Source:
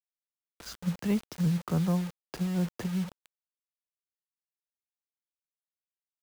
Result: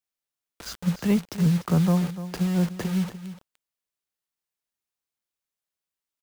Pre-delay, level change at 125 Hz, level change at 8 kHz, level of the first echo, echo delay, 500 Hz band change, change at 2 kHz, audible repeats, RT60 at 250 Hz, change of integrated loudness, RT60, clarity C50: no reverb audible, +6.5 dB, +6.0 dB, −13.0 dB, 296 ms, +6.0 dB, +6.0 dB, 1, no reverb audible, +6.0 dB, no reverb audible, no reverb audible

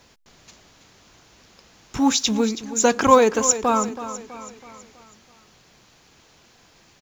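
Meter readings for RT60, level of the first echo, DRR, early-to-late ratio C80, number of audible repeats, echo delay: no reverb audible, −13.0 dB, no reverb audible, no reverb audible, 4, 326 ms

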